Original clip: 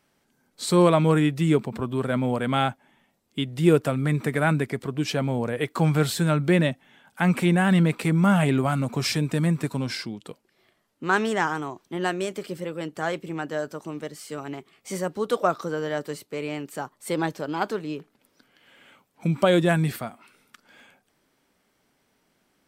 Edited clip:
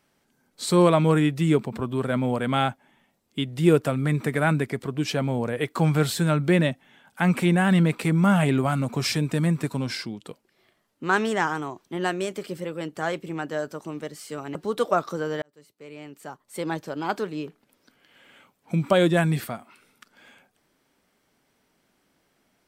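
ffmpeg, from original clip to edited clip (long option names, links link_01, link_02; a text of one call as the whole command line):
ffmpeg -i in.wav -filter_complex "[0:a]asplit=3[link_01][link_02][link_03];[link_01]atrim=end=14.552[link_04];[link_02]atrim=start=15.068:end=15.94,asetpts=PTS-STARTPTS,afade=type=out:start_time=0.868:duration=0.004:curve=hsin[link_05];[link_03]atrim=start=15.94,asetpts=PTS-STARTPTS,afade=type=in:duration=1.81[link_06];[link_05][link_06]concat=n=2:v=0:a=1[link_07];[link_04][link_07]acrossfade=duration=0.004:curve1=hsin:curve2=hsin" out.wav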